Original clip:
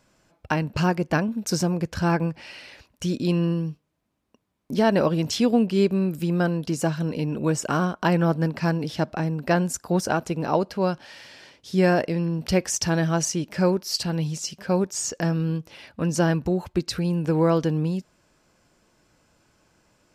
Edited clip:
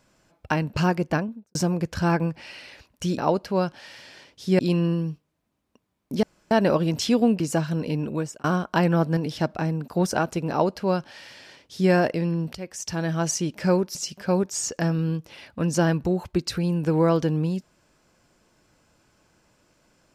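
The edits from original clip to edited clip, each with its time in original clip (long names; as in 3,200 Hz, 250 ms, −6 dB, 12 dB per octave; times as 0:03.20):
0:01.03–0:01.55: fade out and dull
0:04.82: splice in room tone 0.28 s
0:05.71–0:06.69: remove
0:07.32–0:07.73: fade out
0:08.46–0:08.75: remove
0:09.46–0:09.82: remove
0:10.44–0:11.85: duplicate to 0:03.18
0:12.49–0:13.33: fade in, from −19 dB
0:13.89–0:14.36: remove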